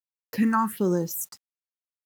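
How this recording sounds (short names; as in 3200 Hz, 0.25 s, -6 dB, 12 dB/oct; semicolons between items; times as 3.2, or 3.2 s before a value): phasing stages 4, 1.3 Hz, lowest notch 470–2900 Hz; a quantiser's noise floor 10-bit, dither none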